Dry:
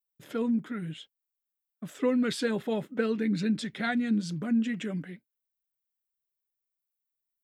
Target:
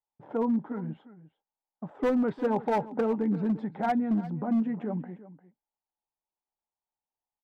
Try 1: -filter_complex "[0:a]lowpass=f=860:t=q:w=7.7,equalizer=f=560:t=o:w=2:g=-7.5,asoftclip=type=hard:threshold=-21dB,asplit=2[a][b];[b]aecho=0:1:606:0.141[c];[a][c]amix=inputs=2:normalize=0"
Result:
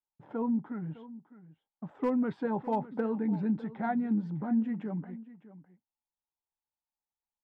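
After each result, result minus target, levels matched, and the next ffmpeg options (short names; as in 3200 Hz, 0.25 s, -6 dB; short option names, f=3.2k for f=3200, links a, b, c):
echo 0.256 s late; 500 Hz band -3.0 dB
-filter_complex "[0:a]lowpass=f=860:t=q:w=7.7,equalizer=f=560:t=o:w=2:g=-7.5,asoftclip=type=hard:threshold=-21dB,asplit=2[a][b];[b]aecho=0:1:350:0.141[c];[a][c]amix=inputs=2:normalize=0"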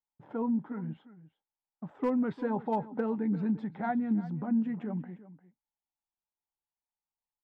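500 Hz band -3.0 dB
-filter_complex "[0:a]lowpass=f=860:t=q:w=7.7,asoftclip=type=hard:threshold=-21dB,asplit=2[a][b];[b]aecho=0:1:350:0.141[c];[a][c]amix=inputs=2:normalize=0"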